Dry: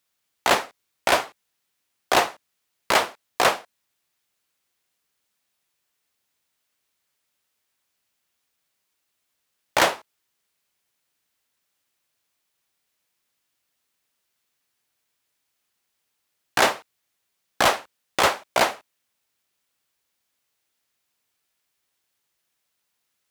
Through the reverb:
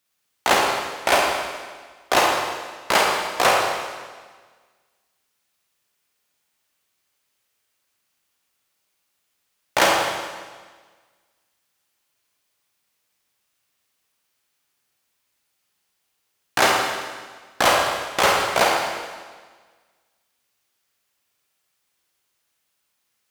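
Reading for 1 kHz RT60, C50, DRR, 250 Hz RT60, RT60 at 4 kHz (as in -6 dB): 1.5 s, 0.5 dB, -1.0 dB, 1.5 s, 1.5 s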